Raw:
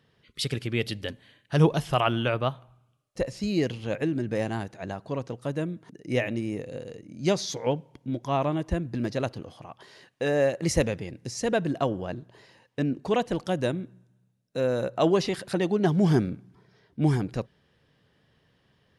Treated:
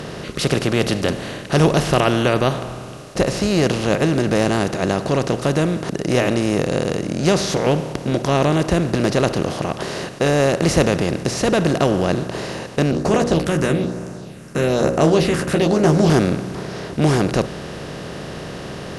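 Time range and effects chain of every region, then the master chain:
12.91–16.10 s: hum notches 60/120/180/240/300/360/420/480/540 Hz + phase shifter stages 4, 1.1 Hz, lowest notch 630–3700 Hz + doubling 13 ms -5.5 dB
whole clip: spectral levelling over time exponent 0.4; treble shelf 9.4 kHz +3.5 dB; trim +2 dB

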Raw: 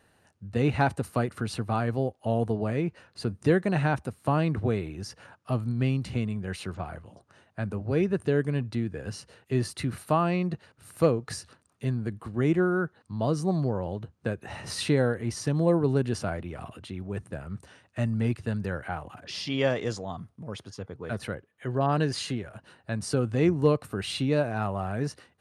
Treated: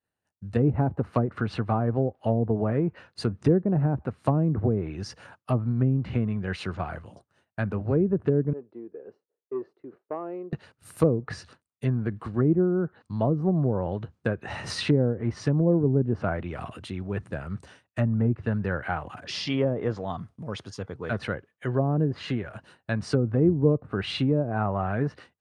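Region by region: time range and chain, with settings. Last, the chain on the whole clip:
8.53–10.53 s: ladder band-pass 450 Hz, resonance 60% + transformer saturation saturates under 340 Hz
whole clip: expander -48 dBFS; low-pass that closes with the level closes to 430 Hz, closed at -21 dBFS; dynamic bell 1.5 kHz, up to +3 dB, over -50 dBFS, Q 0.95; trim +3 dB

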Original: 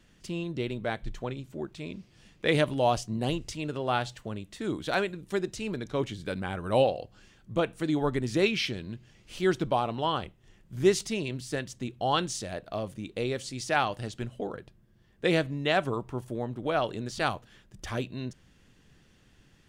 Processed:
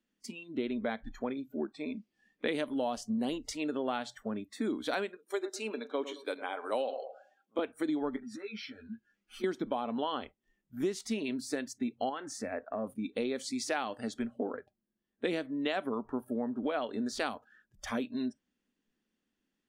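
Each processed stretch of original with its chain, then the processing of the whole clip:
5.16–7.59 s: high-pass 400 Hz + peaking EQ 1.8 kHz -4.5 dB 0.54 oct + filtered feedback delay 108 ms, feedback 35%, low-pass 3.9 kHz, level -13 dB
8.16–9.44 s: peaking EQ 1.4 kHz +6 dB 0.4 oct + compression 8:1, threshold -36 dBFS + three-phase chorus
12.09–12.87 s: resonant high shelf 2.8 kHz -7 dB, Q 1.5 + compression 10:1, threshold -30 dBFS
whole clip: spectral noise reduction 22 dB; resonant low shelf 170 Hz -10 dB, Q 3; compression 10:1, threshold -29 dBFS

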